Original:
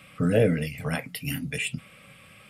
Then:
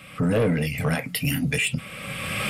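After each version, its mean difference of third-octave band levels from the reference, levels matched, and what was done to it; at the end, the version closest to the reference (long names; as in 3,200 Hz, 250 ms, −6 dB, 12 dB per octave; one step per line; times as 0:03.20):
7.5 dB: camcorder AGC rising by 24 dB per second
in parallel at −2 dB: brickwall limiter −19.5 dBFS, peak gain reduction 9.5 dB
on the sum: soft clipping −15.5 dBFS, distortion −15 dB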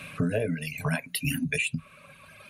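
4.5 dB: reverb reduction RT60 2 s
EQ curve with evenly spaced ripples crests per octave 1.5, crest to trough 9 dB
downward compressor 6 to 1, threshold −33 dBFS, peak gain reduction 15.5 dB
level +8 dB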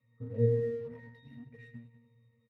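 13.5 dB: resonances in every octave A#, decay 0.8 s
repeating echo 101 ms, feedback 58%, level −10 dB
in parallel at −7.5 dB: dead-zone distortion −56 dBFS
on the sum: level +2 dB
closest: second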